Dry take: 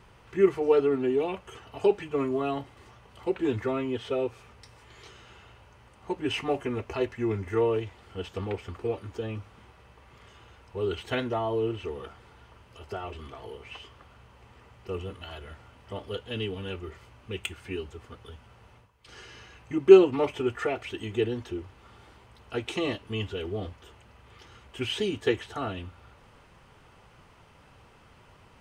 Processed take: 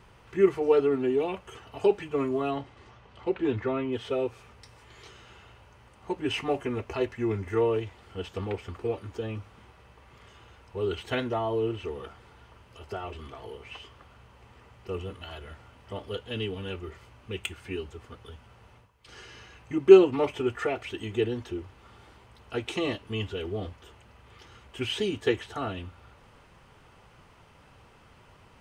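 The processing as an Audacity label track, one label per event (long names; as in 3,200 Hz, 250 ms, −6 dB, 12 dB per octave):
2.500000	3.910000	low-pass filter 6,900 Hz → 3,400 Hz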